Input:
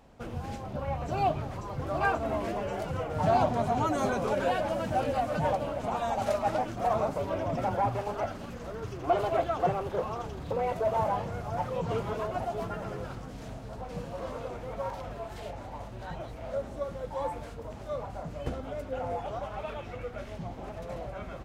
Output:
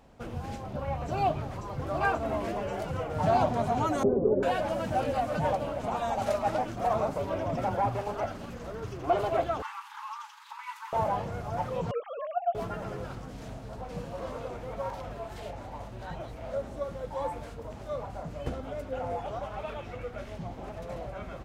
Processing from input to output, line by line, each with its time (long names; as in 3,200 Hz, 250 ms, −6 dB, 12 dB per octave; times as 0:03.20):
0:04.03–0:04.43: low-pass with resonance 390 Hz, resonance Q 4.2
0:09.62–0:10.93: linear-phase brick-wall high-pass 820 Hz
0:11.91–0:12.55: three sine waves on the formant tracks